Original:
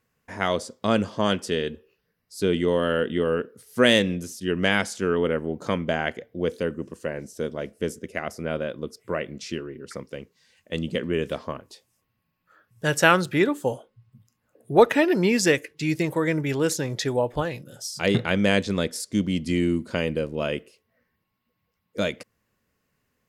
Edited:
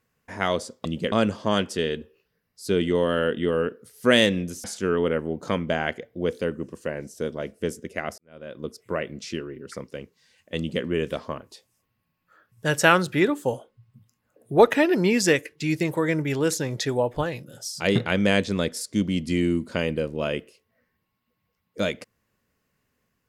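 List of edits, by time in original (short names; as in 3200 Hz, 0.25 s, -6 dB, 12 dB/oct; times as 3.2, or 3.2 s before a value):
4.37–4.83 cut
8.37–8.85 fade in quadratic
10.76–11.03 copy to 0.85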